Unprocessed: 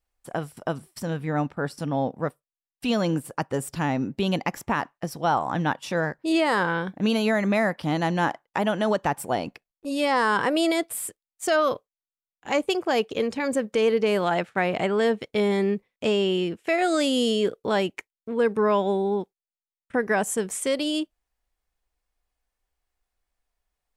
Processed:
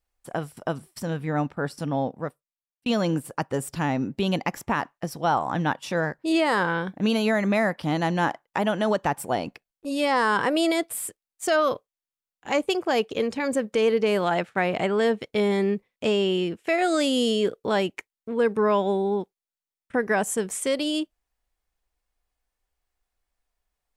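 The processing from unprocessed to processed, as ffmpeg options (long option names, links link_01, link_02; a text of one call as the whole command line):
ffmpeg -i in.wav -filter_complex "[0:a]asplit=2[link_01][link_02];[link_01]atrim=end=2.86,asetpts=PTS-STARTPTS,afade=type=out:start_time=1.94:duration=0.92[link_03];[link_02]atrim=start=2.86,asetpts=PTS-STARTPTS,afade=type=in:duration=0.004:curve=hsin[link_04];[link_03][link_04]concat=n=2:v=0:a=1" out.wav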